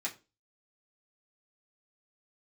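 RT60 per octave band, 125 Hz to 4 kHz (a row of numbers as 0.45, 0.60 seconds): 0.40, 0.40, 0.35, 0.25, 0.25, 0.25 seconds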